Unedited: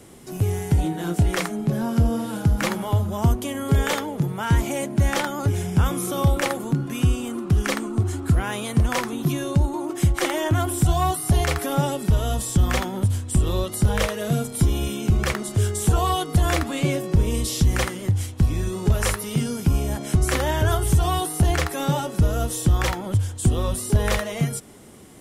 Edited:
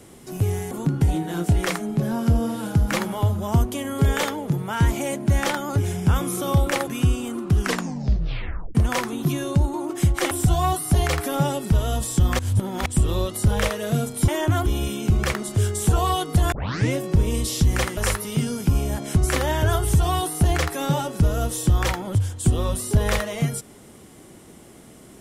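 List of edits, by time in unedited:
0:06.57–0:06.87: move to 0:00.71
0:07.60: tape stop 1.15 s
0:10.31–0:10.69: move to 0:14.66
0:12.77–0:13.24: reverse
0:16.52: tape start 0.41 s
0:17.97–0:18.96: remove

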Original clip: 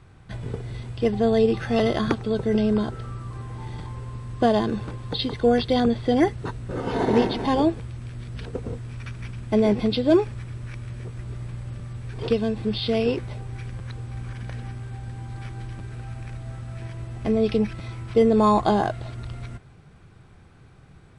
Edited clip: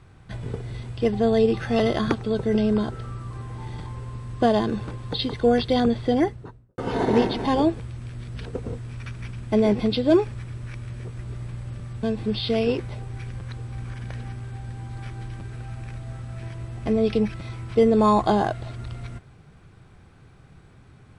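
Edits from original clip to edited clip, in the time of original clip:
0:06.00–0:06.78: fade out and dull
0:12.03–0:12.42: remove

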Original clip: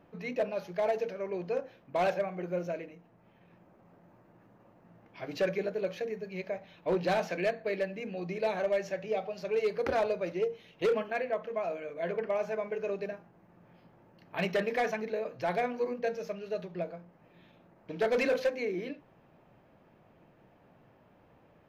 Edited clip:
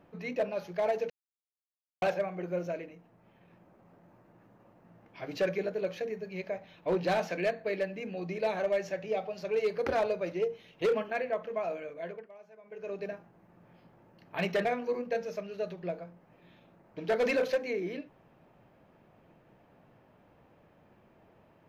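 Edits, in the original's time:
0:01.10–0:02.02: silence
0:11.80–0:13.11: duck −21 dB, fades 0.48 s
0:14.65–0:15.57: remove

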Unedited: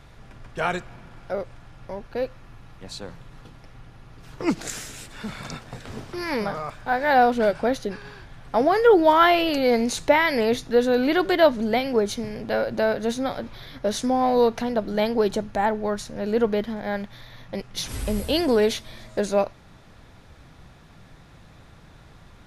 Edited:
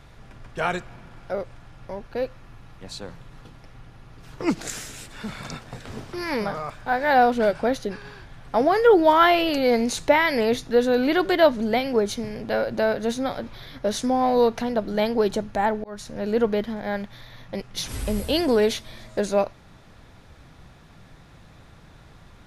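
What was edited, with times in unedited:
0:15.84–0:16.10: fade in

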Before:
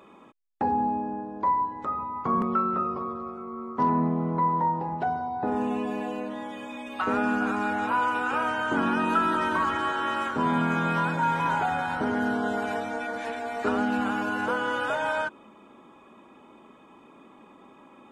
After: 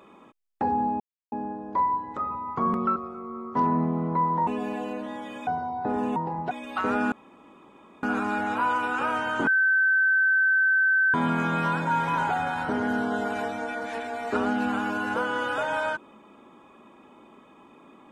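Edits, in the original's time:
0:01.00: splice in silence 0.32 s
0:02.64–0:03.19: remove
0:04.70–0:05.05: swap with 0:05.74–0:06.74
0:07.35: splice in room tone 0.91 s
0:08.79–0:10.46: beep over 1,540 Hz −18 dBFS

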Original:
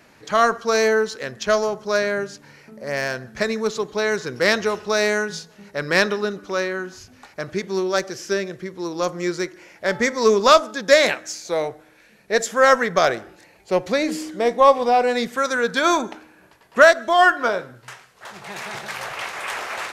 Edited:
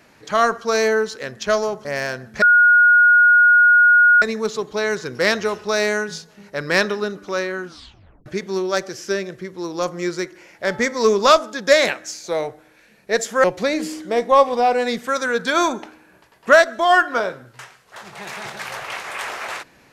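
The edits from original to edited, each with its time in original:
0:01.85–0:02.86: remove
0:03.43: insert tone 1,440 Hz −8.5 dBFS 1.80 s
0:06.86: tape stop 0.61 s
0:12.65–0:13.73: remove

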